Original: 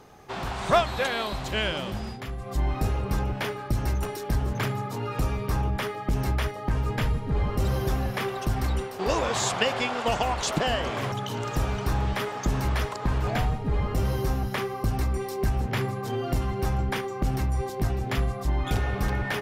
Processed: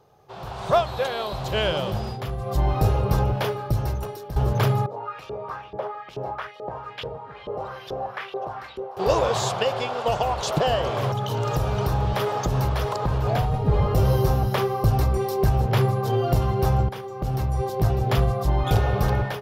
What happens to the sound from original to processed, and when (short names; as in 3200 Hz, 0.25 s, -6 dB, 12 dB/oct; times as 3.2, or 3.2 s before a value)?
3.2–4.36 fade out, to -14 dB
4.86–8.97 LFO band-pass saw up 2.3 Hz 390–3600 Hz
11.12–13.54 compressor 2.5:1, threshold -27 dBFS
16.89–18.12 fade in, from -12.5 dB
whole clip: low shelf 71 Hz -9 dB; AGC gain up to 15 dB; ten-band EQ 125 Hz +6 dB, 250 Hz -10 dB, 500 Hz +4 dB, 2000 Hz -9 dB, 8000 Hz -8 dB; gain -6 dB